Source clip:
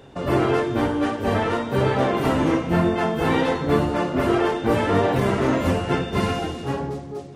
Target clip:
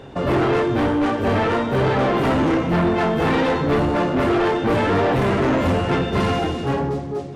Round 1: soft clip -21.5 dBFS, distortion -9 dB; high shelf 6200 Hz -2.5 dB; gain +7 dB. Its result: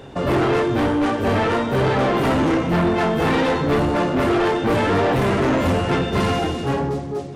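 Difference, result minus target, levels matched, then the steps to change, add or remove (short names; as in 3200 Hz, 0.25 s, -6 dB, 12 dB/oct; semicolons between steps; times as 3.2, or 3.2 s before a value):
8000 Hz band +4.0 dB
change: high shelf 6200 Hz -9.5 dB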